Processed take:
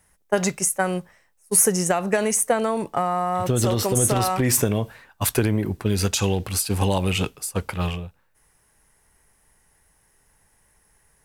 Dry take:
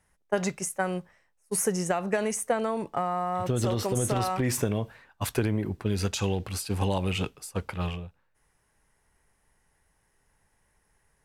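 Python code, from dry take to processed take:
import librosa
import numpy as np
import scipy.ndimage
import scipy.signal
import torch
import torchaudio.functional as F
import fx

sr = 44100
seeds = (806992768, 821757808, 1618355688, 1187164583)

y = fx.high_shelf(x, sr, hz=7600.0, db=10.0)
y = F.gain(torch.from_numpy(y), 5.5).numpy()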